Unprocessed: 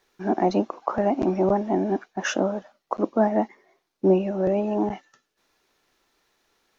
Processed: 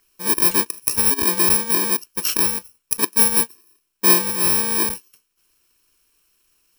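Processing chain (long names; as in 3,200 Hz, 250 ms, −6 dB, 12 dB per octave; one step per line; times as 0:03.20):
samples in bit-reversed order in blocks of 64 samples
parametric band 210 Hz −9 dB 1.7 octaves
level +5.5 dB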